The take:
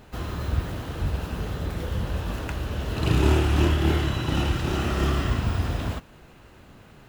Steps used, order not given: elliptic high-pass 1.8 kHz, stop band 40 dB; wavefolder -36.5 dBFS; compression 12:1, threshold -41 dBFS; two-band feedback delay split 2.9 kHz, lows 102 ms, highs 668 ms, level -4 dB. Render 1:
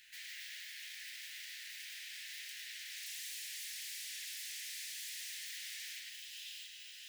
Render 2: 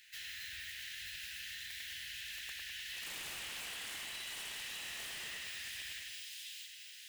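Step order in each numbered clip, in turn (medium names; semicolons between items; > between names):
two-band feedback delay > wavefolder > compression > elliptic high-pass; elliptic high-pass > wavefolder > two-band feedback delay > compression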